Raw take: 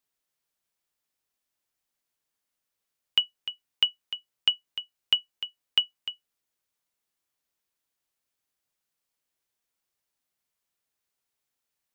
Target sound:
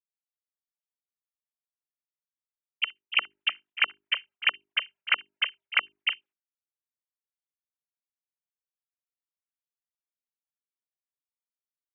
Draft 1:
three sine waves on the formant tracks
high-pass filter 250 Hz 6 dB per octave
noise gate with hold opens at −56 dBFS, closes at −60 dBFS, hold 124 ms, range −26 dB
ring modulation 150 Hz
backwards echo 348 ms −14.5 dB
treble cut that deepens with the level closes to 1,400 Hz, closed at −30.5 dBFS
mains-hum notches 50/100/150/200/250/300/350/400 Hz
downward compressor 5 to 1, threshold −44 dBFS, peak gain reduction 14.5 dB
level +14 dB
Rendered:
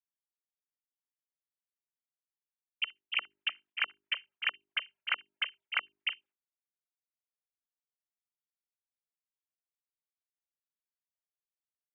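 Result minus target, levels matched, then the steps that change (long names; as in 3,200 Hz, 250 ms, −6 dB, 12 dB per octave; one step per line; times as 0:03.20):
downward compressor: peak gain reduction +9 dB
change: downward compressor 5 to 1, threshold −32.5 dBFS, peak gain reduction 5 dB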